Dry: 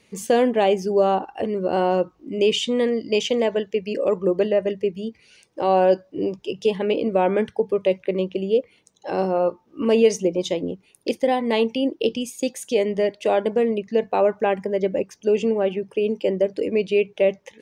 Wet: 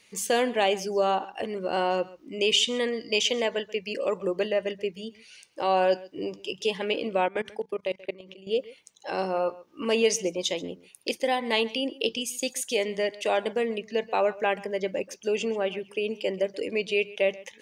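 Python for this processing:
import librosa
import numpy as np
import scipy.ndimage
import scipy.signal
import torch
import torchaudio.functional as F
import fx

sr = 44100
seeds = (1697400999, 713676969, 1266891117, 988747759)

y = x + 10.0 ** (-20.0 / 20.0) * np.pad(x, (int(133 * sr / 1000.0), 0))[:len(x)]
y = fx.level_steps(y, sr, step_db=20, at=(7.26, 8.47))
y = fx.tilt_shelf(y, sr, db=-7.0, hz=860.0)
y = F.gain(torch.from_numpy(y), -3.5).numpy()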